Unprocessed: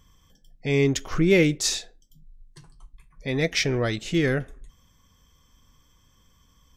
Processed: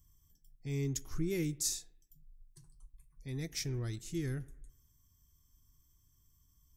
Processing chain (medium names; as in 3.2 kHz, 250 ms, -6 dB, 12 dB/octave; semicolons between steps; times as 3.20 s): FFT filter 130 Hz 0 dB, 200 Hz -10 dB, 350 Hz -6 dB, 550 Hz -21 dB, 870 Hz -13 dB, 1.8 kHz -14 dB, 3 kHz -15 dB, 5.4 kHz -3 dB, 12 kHz +9 dB; on a send: bucket-brigade echo 103 ms, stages 2048, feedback 43%, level -23.5 dB; on the sum: trim -8 dB